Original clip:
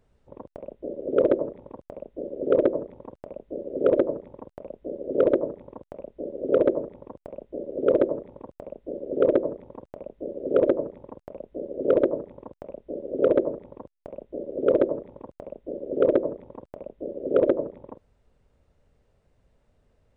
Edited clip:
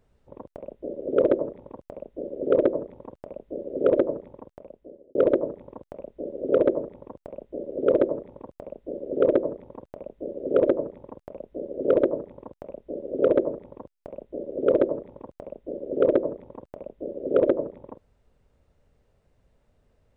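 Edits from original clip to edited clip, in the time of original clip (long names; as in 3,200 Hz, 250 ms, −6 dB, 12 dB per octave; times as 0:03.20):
0:04.23–0:05.15: fade out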